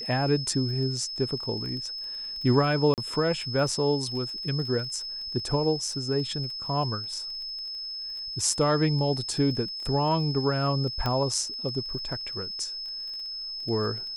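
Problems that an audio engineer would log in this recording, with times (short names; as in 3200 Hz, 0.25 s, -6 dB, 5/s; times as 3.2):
crackle 21/s -36 dBFS
tone 5200 Hz -33 dBFS
2.94–2.98 gap 38 ms
11.06 pop -15 dBFS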